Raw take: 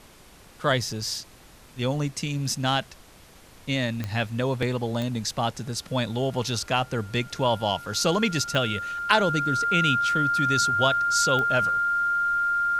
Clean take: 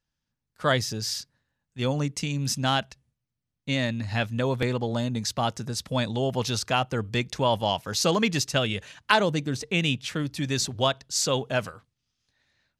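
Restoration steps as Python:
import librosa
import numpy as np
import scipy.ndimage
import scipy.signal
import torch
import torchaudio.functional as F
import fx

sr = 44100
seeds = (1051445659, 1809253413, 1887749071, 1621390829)

y = fx.fix_declick_ar(x, sr, threshold=10.0)
y = fx.notch(y, sr, hz=1400.0, q=30.0)
y = fx.noise_reduce(y, sr, print_start_s=0.06, print_end_s=0.56, reduce_db=30.0)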